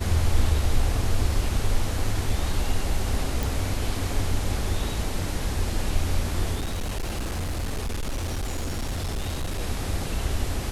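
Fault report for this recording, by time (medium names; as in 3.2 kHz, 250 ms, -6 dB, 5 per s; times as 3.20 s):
3.43 s: pop
6.55–9.61 s: clipped -24.5 dBFS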